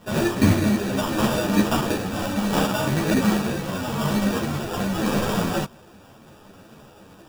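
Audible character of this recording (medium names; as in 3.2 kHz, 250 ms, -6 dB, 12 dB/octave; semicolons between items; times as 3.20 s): aliases and images of a low sample rate 2.1 kHz, jitter 0%; a shimmering, thickened sound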